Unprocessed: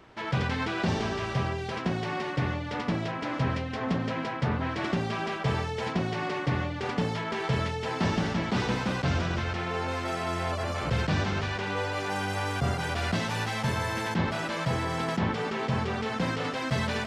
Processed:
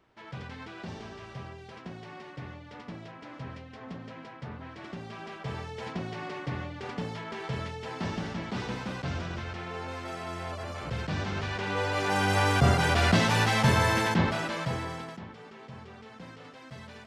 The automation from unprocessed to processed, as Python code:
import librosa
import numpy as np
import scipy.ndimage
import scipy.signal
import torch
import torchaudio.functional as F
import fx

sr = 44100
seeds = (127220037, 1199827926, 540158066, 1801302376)

y = fx.gain(x, sr, db=fx.line((4.82, -13.0), (5.84, -6.5), (11.01, -6.5), (12.37, 6.0), (13.9, 6.0), (14.89, -5.5), (15.27, -17.0)))